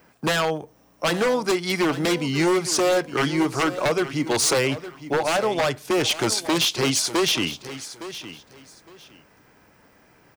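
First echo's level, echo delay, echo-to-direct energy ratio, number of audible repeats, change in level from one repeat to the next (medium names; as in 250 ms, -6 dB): -14.0 dB, 862 ms, -14.0 dB, 2, -13.0 dB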